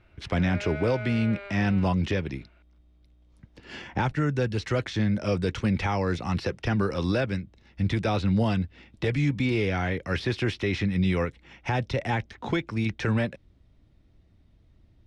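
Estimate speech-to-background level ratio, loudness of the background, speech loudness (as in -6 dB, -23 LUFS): 12.0 dB, -39.5 LUFS, -27.5 LUFS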